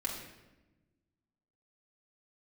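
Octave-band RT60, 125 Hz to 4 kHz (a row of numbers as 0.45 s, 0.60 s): 1.8 s, 1.7 s, 1.2 s, 0.95 s, 0.95 s, 0.75 s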